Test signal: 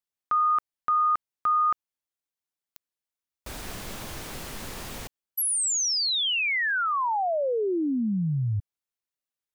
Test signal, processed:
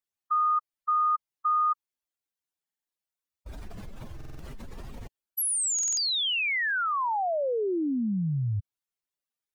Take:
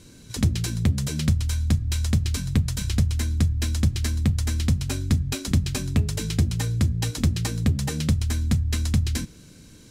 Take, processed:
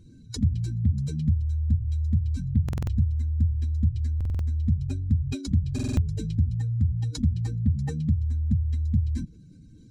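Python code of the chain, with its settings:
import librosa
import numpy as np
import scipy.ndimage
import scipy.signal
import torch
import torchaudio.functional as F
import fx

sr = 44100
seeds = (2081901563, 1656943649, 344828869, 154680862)

y = fx.spec_expand(x, sr, power=2.0)
y = fx.buffer_glitch(y, sr, at_s=(2.64, 4.16, 5.74), block=2048, repeats=4)
y = F.gain(torch.from_numpy(y), -1.5).numpy()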